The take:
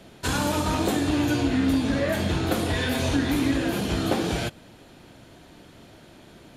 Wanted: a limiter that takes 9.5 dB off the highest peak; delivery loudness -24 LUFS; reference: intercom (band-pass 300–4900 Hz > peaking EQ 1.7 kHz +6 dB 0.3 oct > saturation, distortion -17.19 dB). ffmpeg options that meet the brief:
-af "alimiter=limit=0.112:level=0:latency=1,highpass=300,lowpass=4900,equalizer=f=1700:t=o:w=0.3:g=6,asoftclip=threshold=0.0562,volume=2.51"

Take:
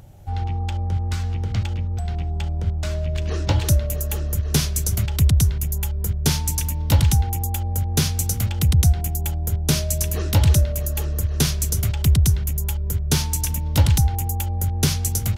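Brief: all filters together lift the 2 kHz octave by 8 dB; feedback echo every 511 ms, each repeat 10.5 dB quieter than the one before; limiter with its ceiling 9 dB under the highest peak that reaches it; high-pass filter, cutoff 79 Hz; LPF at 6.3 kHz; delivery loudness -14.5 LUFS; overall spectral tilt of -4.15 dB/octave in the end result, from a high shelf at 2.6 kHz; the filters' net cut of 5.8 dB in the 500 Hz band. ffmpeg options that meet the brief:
-af "highpass=79,lowpass=6300,equalizer=f=500:t=o:g=-8.5,equalizer=f=2000:t=o:g=7,highshelf=f=2600:g=7.5,alimiter=limit=0.224:level=0:latency=1,aecho=1:1:511|1022|1533:0.299|0.0896|0.0269,volume=3.35"

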